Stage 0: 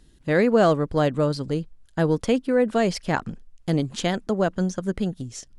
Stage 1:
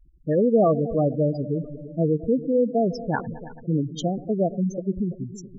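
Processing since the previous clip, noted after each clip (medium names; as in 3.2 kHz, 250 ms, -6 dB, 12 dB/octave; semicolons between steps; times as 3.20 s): multi-head delay 111 ms, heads all three, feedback 54%, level -18 dB; spectral gate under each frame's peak -10 dB strong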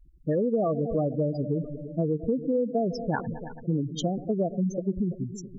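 compression, threshold -22 dBFS, peak gain reduction 8.5 dB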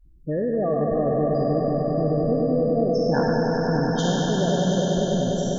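spectral sustain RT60 2.56 s; on a send: echo with a slow build-up 99 ms, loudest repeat 5, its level -8 dB; on the sum: trim -1.5 dB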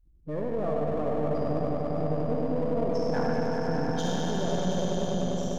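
partial rectifier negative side -7 dB; on a send at -6.5 dB: reverberation, pre-delay 59 ms; on the sum: trim -5 dB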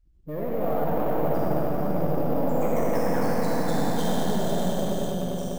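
ever faster or slower copies 135 ms, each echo +2 st, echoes 3; careless resampling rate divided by 3×, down none, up hold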